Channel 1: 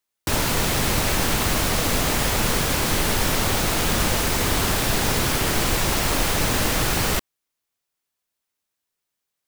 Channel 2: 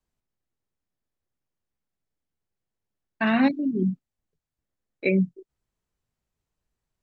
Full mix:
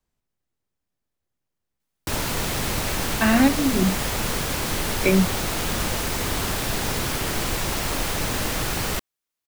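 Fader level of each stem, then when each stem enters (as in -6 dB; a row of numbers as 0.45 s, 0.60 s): -4.0 dB, +3.0 dB; 1.80 s, 0.00 s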